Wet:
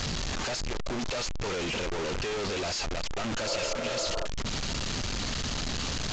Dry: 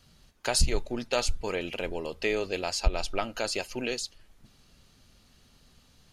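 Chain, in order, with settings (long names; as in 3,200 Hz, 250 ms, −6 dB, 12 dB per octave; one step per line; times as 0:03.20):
sign of each sample alone
healed spectral selection 0:03.49–0:04.23, 250–1,400 Hz before
mu-law 128 kbit/s 16,000 Hz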